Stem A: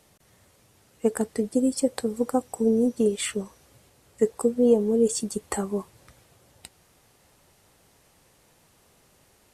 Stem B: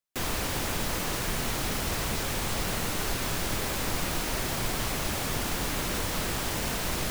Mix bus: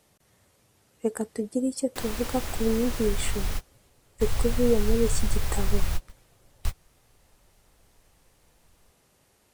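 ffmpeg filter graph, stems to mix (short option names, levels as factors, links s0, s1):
-filter_complex "[0:a]volume=0.631,asplit=2[s0][s1];[1:a]asubboost=boost=11:cutoff=84,adelay=1800,volume=0.531[s2];[s1]apad=whole_len=392889[s3];[s2][s3]sidechaingate=range=0.01:threshold=0.00282:ratio=16:detection=peak[s4];[s0][s4]amix=inputs=2:normalize=0"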